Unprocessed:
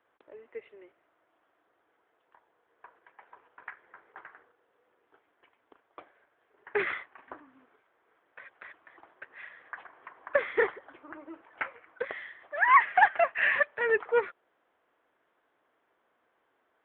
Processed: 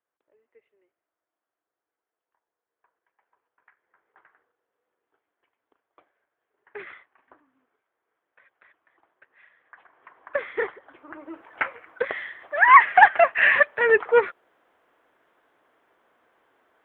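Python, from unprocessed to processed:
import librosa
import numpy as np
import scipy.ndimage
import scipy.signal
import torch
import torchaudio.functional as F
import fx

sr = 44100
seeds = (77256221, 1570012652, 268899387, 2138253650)

y = fx.gain(x, sr, db=fx.line((3.69, -17.0), (4.2, -10.0), (9.63, -10.0), (10.13, -1.0), (10.74, -1.0), (11.47, 8.0)))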